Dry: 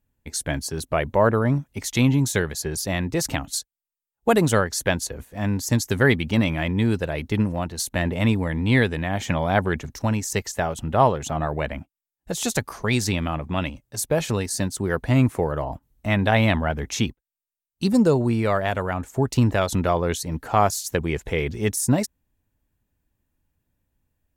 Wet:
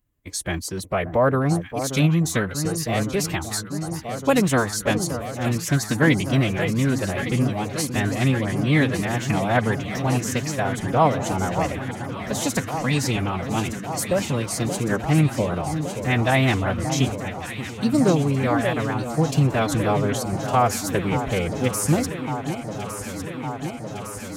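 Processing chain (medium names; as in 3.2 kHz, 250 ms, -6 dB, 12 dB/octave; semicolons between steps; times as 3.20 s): echo whose repeats swap between lows and highs 579 ms, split 1.2 kHz, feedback 88%, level -9 dB; formant-preserving pitch shift +3 st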